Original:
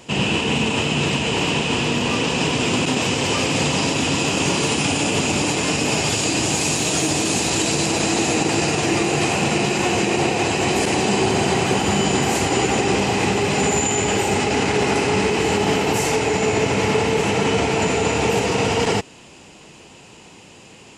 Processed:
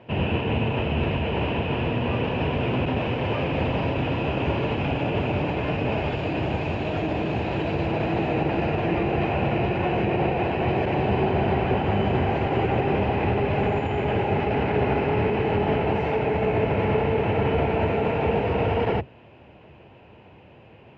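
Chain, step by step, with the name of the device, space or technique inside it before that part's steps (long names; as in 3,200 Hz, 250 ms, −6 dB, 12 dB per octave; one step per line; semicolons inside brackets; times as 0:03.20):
sub-octave bass pedal (sub-octave generator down 1 octave, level 0 dB; loudspeaker in its box 61–2,400 Hz, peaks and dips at 75 Hz +4 dB, 180 Hz −3 dB, 280 Hz −3 dB, 610 Hz +5 dB, 1,200 Hz −5 dB, 2,000 Hz −4 dB)
level −4 dB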